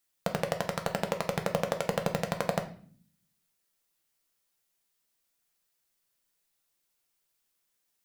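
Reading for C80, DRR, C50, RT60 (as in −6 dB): 16.0 dB, 4.5 dB, 12.5 dB, 0.50 s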